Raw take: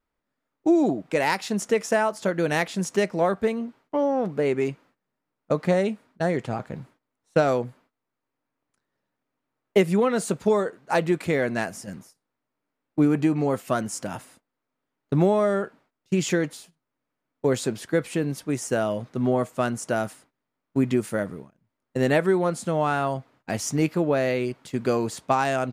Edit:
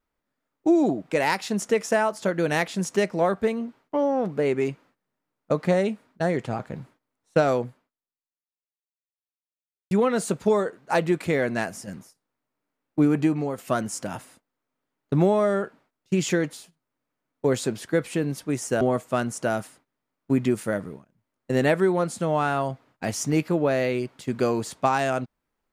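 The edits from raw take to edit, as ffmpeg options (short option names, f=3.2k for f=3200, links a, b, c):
-filter_complex "[0:a]asplit=4[a][b][c][d];[a]atrim=end=9.91,asetpts=PTS-STARTPTS,afade=t=out:st=7.65:d=2.26:c=exp[e];[b]atrim=start=9.91:end=13.58,asetpts=PTS-STARTPTS,afade=t=in:d=0.004:c=hsin,afade=t=out:st=3.36:d=0.31:silence=0.375837[f];[c]atrim=start=13.58:end=18.812,asetpts=PTS-STARTPTS,afade=t=in:d=0.004:c=hsin:silence=0.375837[g];[d]atrim=start=19.268[h];[e][f][g]concat=n=3:v=0:a=1[i];[i][h]acrossfade=d=0.004:c1=hsin:c2=hsin"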